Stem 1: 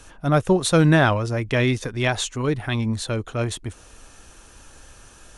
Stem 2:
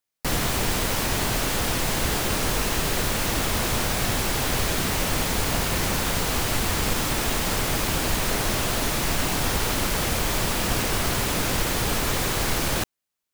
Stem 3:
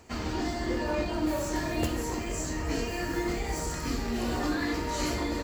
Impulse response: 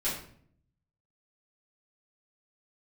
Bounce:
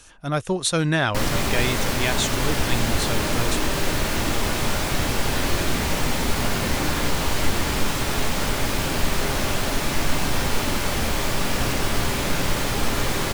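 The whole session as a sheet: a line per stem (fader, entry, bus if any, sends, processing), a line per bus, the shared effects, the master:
−6.5 dB, 0.00 s, no send, high-shelf EQ 2,200 Hz +12 dB
−1.5 dB, 0.90 s, send −10.5 dB, no processing
−4.0 dB, 2.35 s, no send, no processing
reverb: on, RT60 0.60 s, pre-delay 3 ms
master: high-shelf EQ 8,000 Hz −6 dB

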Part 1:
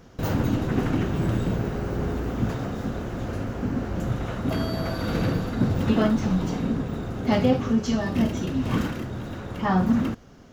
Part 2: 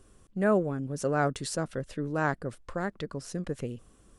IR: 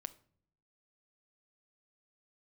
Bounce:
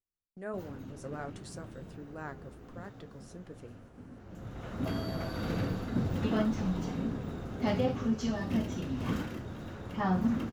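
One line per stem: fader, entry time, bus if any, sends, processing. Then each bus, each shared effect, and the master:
−5.0 dB, 0.35 s, send −15.5 dB, automatic ducking −19 dB, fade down 0.30 s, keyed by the second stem
−10.0 dB, 0.00 s, no send, no processing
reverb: on, pre-delay 6 ms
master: noise gate −49 dBFS, range −29 dB; flanger 1.4 Hz, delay 9.4 ms, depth 4.3 ms, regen −62%

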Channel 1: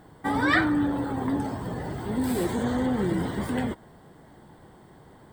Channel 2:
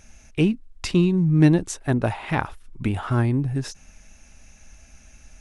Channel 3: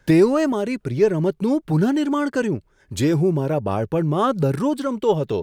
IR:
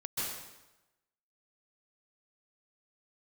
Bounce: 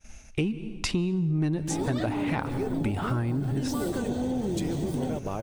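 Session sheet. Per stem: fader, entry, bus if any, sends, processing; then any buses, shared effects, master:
−0.5 dB, 1.45 s, no send, flat-topped bell 1,600 Hz −13.5 dB
+2.0 dB, 0.00 s, send −21 dB, downward expander −45 dBFS
−5.0 dB, 1.60 s, send −14 dB, downward compressor 4 to 1, threshold −25 dBFS, peak gain reduction 12.5 dB; floating-point word with a short mantissa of 4 bits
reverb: on, RT60 1.0 s, pre-delay 123 ms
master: soft clipping −6 dBFS, distortion −20 dB; notch filter 1,700 Hz, Q 26; downward compressor 5 to 1, threshold −25 dBFS, peak gain reduction 13 dB

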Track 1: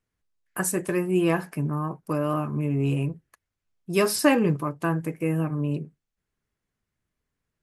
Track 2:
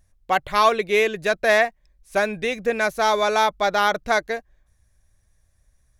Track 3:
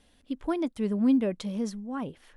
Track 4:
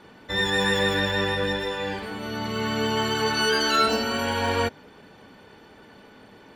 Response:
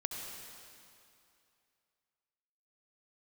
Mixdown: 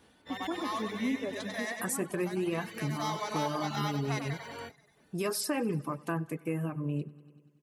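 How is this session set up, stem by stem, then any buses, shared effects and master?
+0.5 dB, 1.25 s, no send, echo send −13 dB, brickwall limiter −16 dBFS, peak gain reduction 9.5 dB
−12.5 dB, 0.00 s, no send, echo send −5 dB, high-shelf EQ 2,900 Hz +8.5 dB; comb filter 1 ms, depth 65%; automatic ducking −16 dB, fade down 0.60 s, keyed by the third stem
−1.0 dB, 0.00 s, no send, echo send −5.5 dB, reverb reduction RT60 1.6 s
−18.0 dB, 0.00 s, no send, no echo send, every bin's largest magnitude spread in time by 60 ms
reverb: not used
echo: repeating echo 96 ms, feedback 58%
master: reverb reduction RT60 0.59 s; high-pass filter 83 Hz; downward compressor 1.5 to 1, threshold −41 dBFS, peak gain reduction 8 dB

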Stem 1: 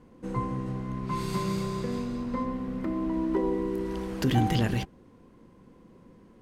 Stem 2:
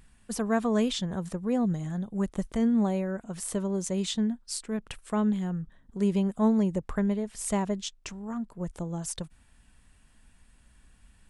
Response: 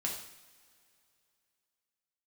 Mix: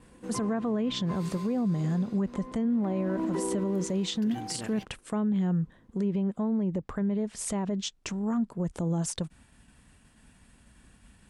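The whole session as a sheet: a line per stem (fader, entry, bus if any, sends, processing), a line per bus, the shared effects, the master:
0:00.86 −3 dB → 0:01.47 −10 dB → 0:02.42 −10 dB → 0:02.89 −0.5 dB → 0:03.73 −0.5 dB → 0:04.14 −11.5 dB, 0.00 s, no send, no processing
+1.0 dB, 0.00 s, no send, downward expander −56 dBFS; treble cut that deepens with the level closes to 2,700 Hz, closed at −21 dBFS; low-shelf EQ 390 Hz +11.5 dB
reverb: not used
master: high-pass filter 270 Hz 6 dB per octave; speech leveller within 3 dB 0.5 s; brickwall limiter −21.5 dBFS, peak gain reduction 12 dB

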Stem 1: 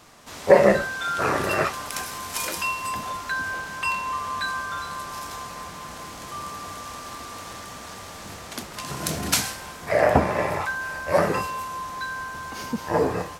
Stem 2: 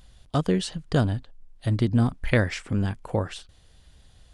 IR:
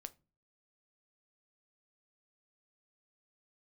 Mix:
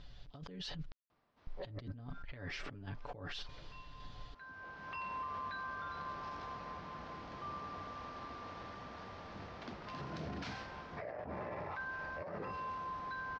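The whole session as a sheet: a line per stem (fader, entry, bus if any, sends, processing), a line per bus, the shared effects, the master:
−13.5 dB, 1.10 s, no send, low-pass filter 1,600 Hz 6 dB per octave; automatic ducking −18 dB, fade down 1.35 s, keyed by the second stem
−1.5 dB, 0.00 s, muted 0:00.92–0:01.47, no send, comb filter 7 ms, depth 69%; sample-and-hold tremolo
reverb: not used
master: Butterworth low-pass 5,400 Hz 36 dB per octave; compressor whose output falls as the input rises −40 dBFS, ratio −1; brickwall limiter −35 dBFS, peak gain reduction 11.5 dB

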